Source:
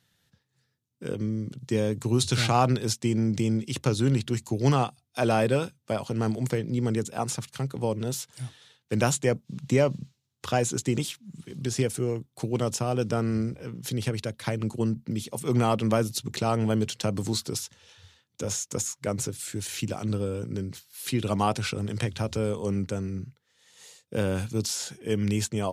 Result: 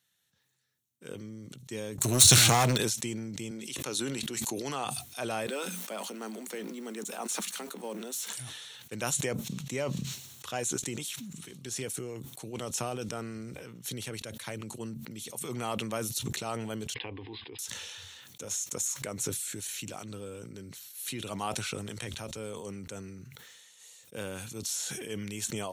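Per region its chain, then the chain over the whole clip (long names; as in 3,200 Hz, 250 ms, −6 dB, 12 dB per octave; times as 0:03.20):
0:01.98–0:02.78: bass and treble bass +5 dB, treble +7 dB + leveller curve on the samples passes 3
0:03.51–0:04.85: high-pass filter 210 Hz + level that may fall only so fast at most 32 dB per second
0:05.47–0:08.33: mu-law and A-law mismatch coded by mu + Chebyshev high-pass filter 180 Hz, order 10
0:16.94–0:17.59: linear-phase brick-wall low-pass 5,100 Hz + high-shelf EQ 3,700 Hz +6 dB + phaser with its sweep stopped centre 900 Hz, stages 8
whole clip: spectral tilt +2.5 dB per octave; notch filter 4,900 Hz, Q 5.9; level that may fall only so fast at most 23 dB per second; level −9 dB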